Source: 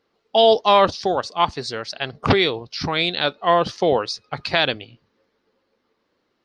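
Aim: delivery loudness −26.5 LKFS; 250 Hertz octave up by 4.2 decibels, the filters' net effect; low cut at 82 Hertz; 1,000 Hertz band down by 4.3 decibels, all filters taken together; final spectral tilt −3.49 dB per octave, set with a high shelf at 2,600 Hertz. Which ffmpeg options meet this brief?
ffmpeg -i in.wav -af "highpass=82,equalizer=frequency=250:width_type=o:gain=6.5,equalizer=frequency=1000:width_type=o:gain=-5.5,highshelf=frequency=2600:gain=-5,volume=-5.5dB" out.wav

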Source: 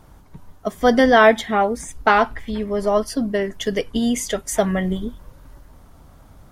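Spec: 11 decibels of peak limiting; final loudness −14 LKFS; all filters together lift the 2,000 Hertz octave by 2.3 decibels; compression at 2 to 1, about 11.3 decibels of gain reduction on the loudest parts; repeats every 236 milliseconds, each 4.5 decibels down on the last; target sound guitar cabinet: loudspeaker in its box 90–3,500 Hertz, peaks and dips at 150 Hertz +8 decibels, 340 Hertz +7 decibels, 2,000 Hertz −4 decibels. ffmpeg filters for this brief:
ffmpeg -i in.wav -af "equalizer=frequency=2000:width_type=o:gain=5,acompressor=threshold=-28dB:ratio=2,alimiter=limit=-20.5dB:level=0:latency=1,highpass=90,equalizer=frequency=150:width_type=q:width=4:gain=8,equalizer=frequency=340:width_type=q:width=4:gain=7,equalizer=frequency=2000:width_type=q:width=4:gain=-4,lowpass=frequency=3500:width=0.5412,lowpass=frequency=3500:width=1.3066,aecho=1:1:236|472|708|944|1180|1416|1652|1888|2124:0.596|0.357|0.214|0.129|0.0772|0.0463|0.0278|0.0167|0.01,volume=14dB" out.wav

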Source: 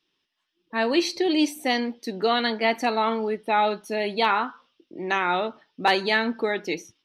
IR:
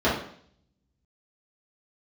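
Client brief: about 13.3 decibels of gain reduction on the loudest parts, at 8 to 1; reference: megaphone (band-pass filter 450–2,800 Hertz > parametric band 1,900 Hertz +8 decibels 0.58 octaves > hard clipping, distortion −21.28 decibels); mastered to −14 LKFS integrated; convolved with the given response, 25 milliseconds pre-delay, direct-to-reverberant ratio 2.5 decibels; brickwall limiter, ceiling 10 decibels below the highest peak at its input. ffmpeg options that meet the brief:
-filter_complex "[0:a]acompressor=threshold=-30dB:ratio=8,alimiter=level_in=3dB:limit=-24dB:level=0:latency=1,volume=-3dB,asplit=2[link_01][link_02];[1:a]atrim=start_sample=2205,adelay=25[link_03];[link_02][link_03]afir=irnorm=-1:irlink=0,volume=-19.5dB[link_04];[link_01][link_04]amix=inputs=2:normalize=0,highpass=450,lowpass=2800,equalizer=frequency=1900:width_type=o:width=0.58:gain=8,asoftclip=type=hard:threshold=-27.5dB,volume=22dB"

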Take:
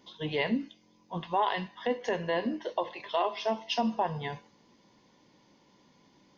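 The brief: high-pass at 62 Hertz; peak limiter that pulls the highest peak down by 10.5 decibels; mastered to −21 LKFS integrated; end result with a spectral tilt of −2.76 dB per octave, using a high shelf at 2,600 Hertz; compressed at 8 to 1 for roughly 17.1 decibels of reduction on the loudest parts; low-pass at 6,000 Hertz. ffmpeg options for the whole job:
ffmpeg -i in.wav -af "highpass=62,lowpass=6000,highshelf=frequency=2600:gain=8.5,acompressor=threshold=-41dB:ratio=8,volume=26.5dB,alimiter=limit=-10.5dB:level=0:latency=1" out.wav

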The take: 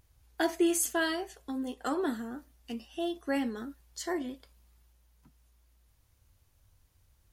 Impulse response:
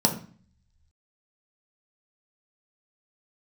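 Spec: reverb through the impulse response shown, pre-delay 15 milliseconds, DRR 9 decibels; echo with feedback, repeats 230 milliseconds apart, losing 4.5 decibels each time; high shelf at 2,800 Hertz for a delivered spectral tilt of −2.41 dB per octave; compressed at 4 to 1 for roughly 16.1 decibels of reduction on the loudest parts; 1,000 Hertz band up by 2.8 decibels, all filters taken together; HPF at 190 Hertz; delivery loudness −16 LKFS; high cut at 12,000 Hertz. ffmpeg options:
-filter_complex "[0:a]highpass=190,lowpass=12000,equalizer=frequency=1000:width_type=o:gain=3.5,highshelf=frequency=2800:gain=3.5,acompressor=threshold=-42dB:ratio=4,aecho=1:1:230|460|690|920|1150|1380|1610|1840|2070:0.596|0.357|0.214|0.129|0.0772|0.0463|0.0278|0.0167|0.01,asplit=2[link_01][link_02];[1:a]atrim=start_sample=2205,adelay=15[link_03];[link_02][link_03]afir=irnorm=-1:irlink=0,volume=-22dB[link_04];[link_01][link_04]amix=inputs=2:normalize=0,volume=25.5dB"

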